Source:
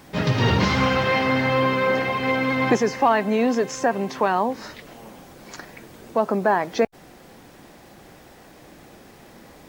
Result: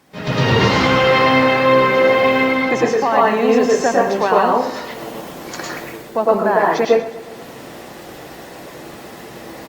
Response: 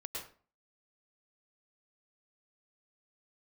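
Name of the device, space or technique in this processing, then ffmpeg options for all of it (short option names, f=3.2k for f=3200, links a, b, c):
far-field microphone of a smart speaker: -filter_complex "[0:a]aecho=1:1:120|240|360|480|600:0.168|0.0907|0.049|0.0264|0.0143[a];[1:a]atrim=start_sample=2205[b];[a][b]afir=irnorm=-1:irlink=0,highpass=f=150:p=1,dynaudnorm=f=120:g=5:m=14.5dB,volume=-1dB" -ar 48000 -c:a libopus -b:a 48k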